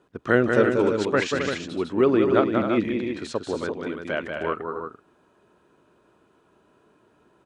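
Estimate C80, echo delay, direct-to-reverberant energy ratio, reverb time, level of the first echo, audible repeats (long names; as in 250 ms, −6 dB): no reverb audible, 187 ms, no reverb audible, no reverb audible, −5.0 dB, 3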